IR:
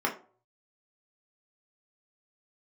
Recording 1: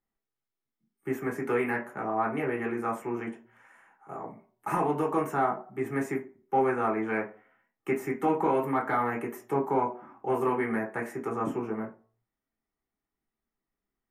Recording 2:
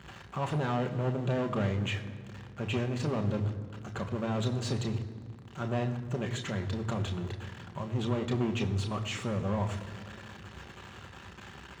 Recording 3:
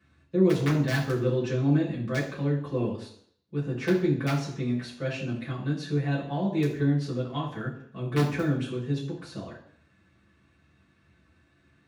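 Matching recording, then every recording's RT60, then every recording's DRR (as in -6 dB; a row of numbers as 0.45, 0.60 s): 1; 0.45, 2.0, 0.60 s; -1.5, 4.5, -6.5 dB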